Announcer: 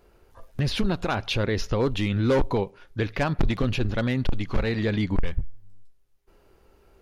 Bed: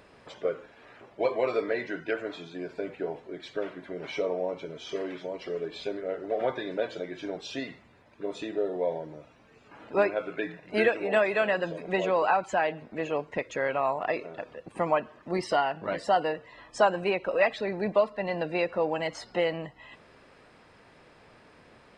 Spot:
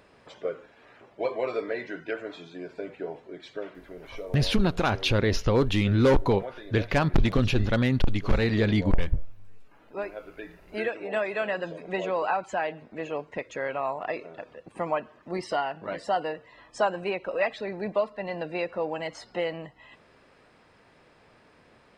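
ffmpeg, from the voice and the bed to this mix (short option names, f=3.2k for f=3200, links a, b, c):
-filter_complex "[0:a]adelay=3750,volume=1.5dB[a];[1:a]volume=5dB,afade=t=out:st=3.37:d=0.88:silence=0.421697,afade=t=in:st=10.33:d=1.28:silence=0.446684[b];[a][b]amix=inputs=2:normalize=0"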